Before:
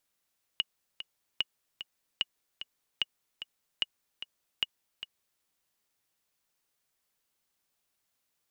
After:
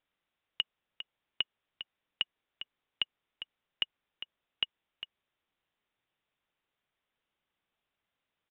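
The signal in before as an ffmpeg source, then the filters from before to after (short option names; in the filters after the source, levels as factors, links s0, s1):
-f lavfi -i "aevalsrc='pow(10,(-14-11.5*gte(mod(t,2*60/149),60/149))/20)*sin(2*PI*2890*mod(t,60/149))*exp(-6.91*mod(t,60/149)/0.03)':d=4.83:s=44100"
-af "aresample=8000,aresample=44100"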